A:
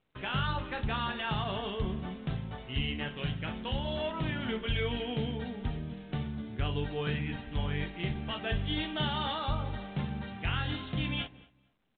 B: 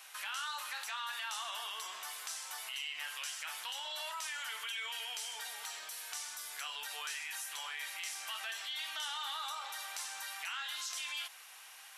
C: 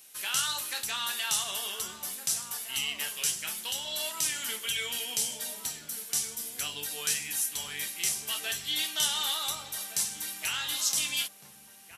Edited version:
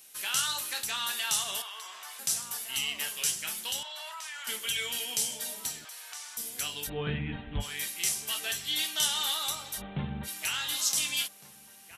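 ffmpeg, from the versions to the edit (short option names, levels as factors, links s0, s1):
-filter_complex "[1:a]asplit=3[s0][s1][s2];[0:a]asplit=2[s3][s4];[2:a]asplit=6[s5][s6][s7][s8][s9][s10];[s5]atrim=end=1.622[s11];[s0]atrim=start=1.618:end=2.192[s12];[s6]atrim=start=2.188:end=3.832[s13];[s1]atrim=start=3.828:end=4.472[s14];[s7]atrim=start=4.468:end=5.852[s15];[s2]atrim=start=5.848:end=6.372[s16];[s8]atrim=start=6.368:end=6.9[s17];[s3]atrim=start=6.86:end=7.64[s18];[s9]atrim=start=7.6:end=9.82[s19];[s4]atrim=start=9.76:end=10.29[s20];[s10]atrim=start=10.23[s21];[s11][s12]acrossfade=d=0.004:c1=hsin:c2=hsin[s22];[s22][s13]acrossfade=d=0.004:c1=hsin:c2=hsin[s23];[s23][s14]acrossfade=d=0.004:c1=hsin:c2=hsin[s24];[s24][s15]acrossfade=d=0.004:c1=hsin:c2=hsin[s25];[s25][s16]acrossfade=d=0.004:c1=hsin:c2=hsin[s26];[s26][s17]acrossfade=d=0.004:c1=hsin:c2=hsin[s27];[s27][s18]acrossfade=d=0.04:c1=tri:c2=tri[s28];[s28][s19]acrossfade=d=0.04:c1=tri:c2=tri[s29];[s29][s20]acrossfade=d=0.06:c1=tri:c2=tri[s30];[s30][s21]acrossfade=d=0.06:c1=tri:c2=tri"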